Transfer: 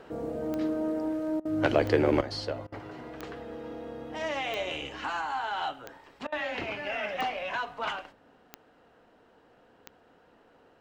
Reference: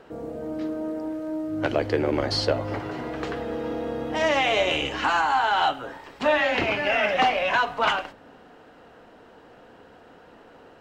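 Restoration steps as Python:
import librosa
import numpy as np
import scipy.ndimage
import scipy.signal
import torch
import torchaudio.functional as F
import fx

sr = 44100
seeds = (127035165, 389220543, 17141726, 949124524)

y = fx.fix_declick_ar(x, sr, threshold=10.0)
y = fx.fix_interpolate(y, sr, at_s=(1.4, 2.67, 6.27), length_ms=51.0)
y = fx.fix_level(y, sr, at_s=2.21, step_db=10.5)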